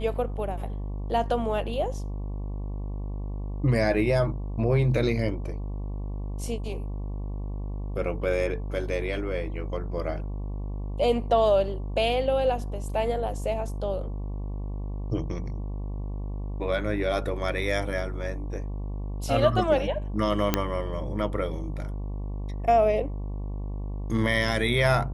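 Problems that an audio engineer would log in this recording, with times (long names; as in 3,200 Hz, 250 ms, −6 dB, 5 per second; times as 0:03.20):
mains buzz 50 Hz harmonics 23 −32 dBFS
0:20.54: click −6 dBFS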